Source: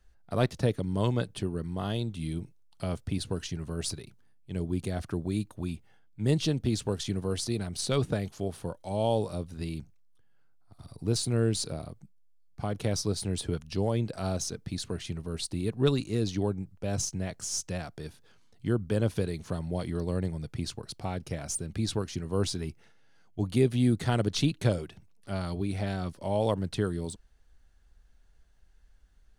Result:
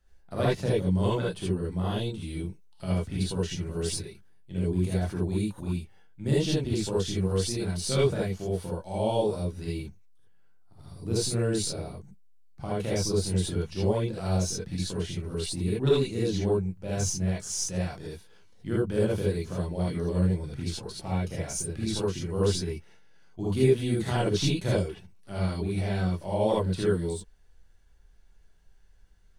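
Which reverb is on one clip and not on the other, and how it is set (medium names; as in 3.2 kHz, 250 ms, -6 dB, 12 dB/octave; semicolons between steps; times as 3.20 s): gated-style reverb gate 100 ms rising, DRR -7 dB; trim -5.5 dB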